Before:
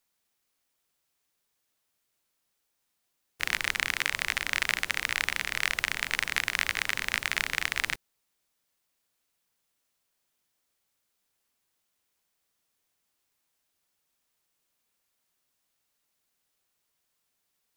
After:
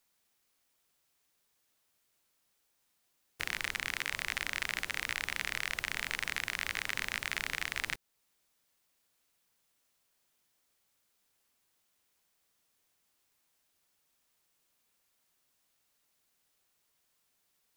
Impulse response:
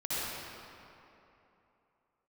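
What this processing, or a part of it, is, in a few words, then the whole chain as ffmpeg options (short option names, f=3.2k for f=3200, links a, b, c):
stacked limiters: -af "alimiter=limit=-10.5dB:level=0:latency=1:release=13,alimiter=limit=-16.5dB:level=0:latency=1:release=317,volume=2dB"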